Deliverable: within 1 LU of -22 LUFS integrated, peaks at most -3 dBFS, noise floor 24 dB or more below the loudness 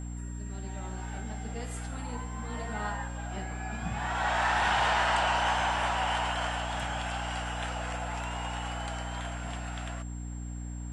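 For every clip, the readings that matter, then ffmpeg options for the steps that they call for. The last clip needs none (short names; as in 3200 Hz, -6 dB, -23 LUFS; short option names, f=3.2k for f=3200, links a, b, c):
hum 60 Hz; harmonics up to 300 Hz; hum level -35 dBFS; steady tone 7500 Hz; tone level -51 dBFS; loudness -32.0 LUFS; peak -15.0 dBFS; loudness target -22.0 LUFS
-> -af "bandreject=f=60:t=h:w=4,bandreject=f=120:t=h:w=4,bandreject=f=180:t=h:w=4,bandreject=f=240:t=h:w=4,bandreject=f=300:t=h:w=4"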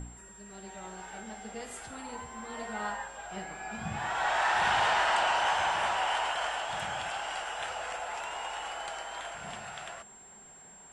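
hum none; steady tone 7500 Hz; tone level -51 dBFS
-> -af "bandreject=f=7.5k:w=30"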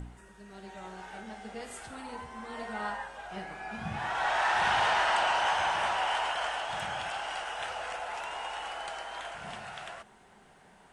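steady tone none; loudness -32.0 LUFS; peak -16.5 dBFS; loudness target -22.0 LUFS
-> -af "volume=10dB"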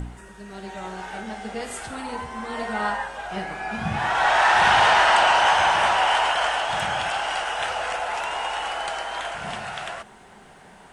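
loudness -22.0 LUFS; peak -6.5 dBFS; noise floor -48 dBFS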